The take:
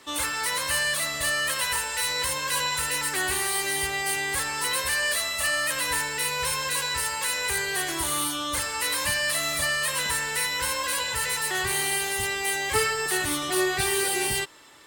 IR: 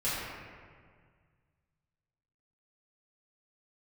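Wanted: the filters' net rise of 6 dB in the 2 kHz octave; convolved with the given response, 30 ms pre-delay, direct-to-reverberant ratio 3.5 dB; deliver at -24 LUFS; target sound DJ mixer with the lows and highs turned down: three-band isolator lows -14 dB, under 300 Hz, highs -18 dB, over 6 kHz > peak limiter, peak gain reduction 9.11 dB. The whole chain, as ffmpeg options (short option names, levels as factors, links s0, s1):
-filter_complex "[0:a]equalizer=f=2000:t=o:g=7,asplit=2[s0][s1];[1:a]atrim=start_sample=2205,adelay=30[s2];[s1][s2]afir=irnorm=-1:irlink=0,volume=0.237[s3];[s0][s3]amix=inputs=2:normalize=0,acrossover=split=300 6000:gain=0.2 1 0.126[s4][s5][s6];[s4][s5][s6]amix=inputs=3:normalize=0,volume=1.06,alimiter=limit=0.133:level=0:latency=1"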